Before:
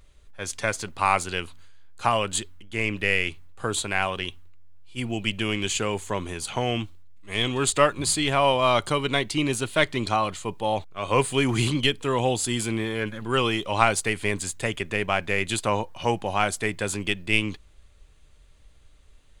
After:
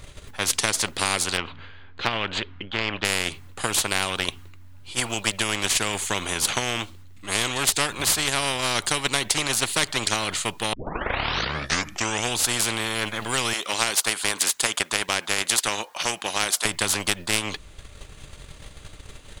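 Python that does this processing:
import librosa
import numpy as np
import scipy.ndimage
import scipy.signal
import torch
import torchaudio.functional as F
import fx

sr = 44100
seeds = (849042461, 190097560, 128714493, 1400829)

y = fx.lowpass(x, sr, hz=3300.0, slope=24, at=(1.37, 3.05))
y = fx.highpass(y, sr, hz=710.0, slope=12, at=(13.53, 16.65))
y = fx.edit(y, sr, fx.tape_start(start_s=10.73, length_s=1.63), tone=tone)
y = fx.transient(y, sr, attack_db=6, sustain_db=-5)
y = fx.spectral_comp(y, sr, ratio=4.0)
y = y * librosa.db_to_amplitude(-3.5)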